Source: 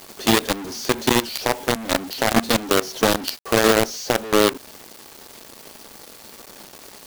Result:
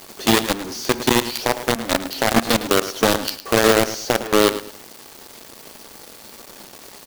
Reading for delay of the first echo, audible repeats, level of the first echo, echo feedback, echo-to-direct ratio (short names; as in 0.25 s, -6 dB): 0.107 s, 2, -13.0 dB, 26%, -12.5 dB